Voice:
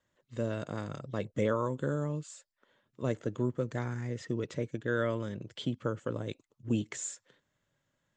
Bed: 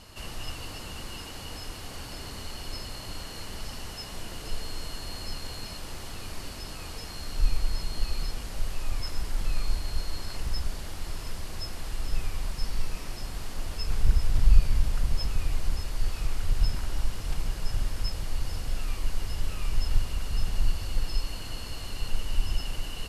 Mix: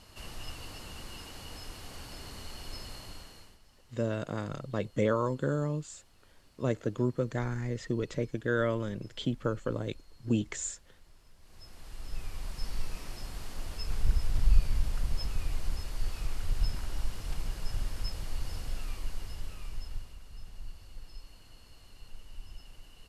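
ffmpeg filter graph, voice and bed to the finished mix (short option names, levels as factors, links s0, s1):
-filter_complex "[0:a]adelay=3600,volume=1.26[s0];[1:a]volume=5.01,afade=t=out:st=2.93:d=0.66:silence=0.112202,afade=t=in:st=11.38:d=1.36:silence=0.105925,afade=t=out:st=18.61:d=1.59:silence=0.211349[s1];[s0][s1]amix=inputs=2:normalize=0"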